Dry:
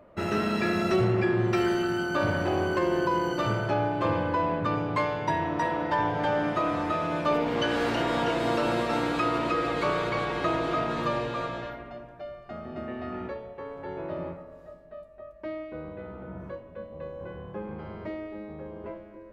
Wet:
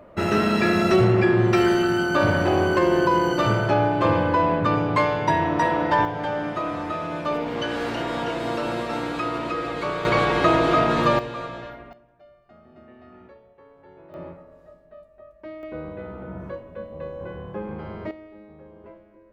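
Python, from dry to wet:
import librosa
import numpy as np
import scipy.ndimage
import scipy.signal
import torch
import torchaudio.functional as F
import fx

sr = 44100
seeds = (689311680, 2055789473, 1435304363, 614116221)

y = fx.gain(x, sr, db=fx.steps((0.0, 6.5), (6.05, -0.5), (10.05, 9.0), (11.19, -0.5), (11.93, -12.5), (14.14, -2.5), (15.63, 4.5), (18.11, -6.5)))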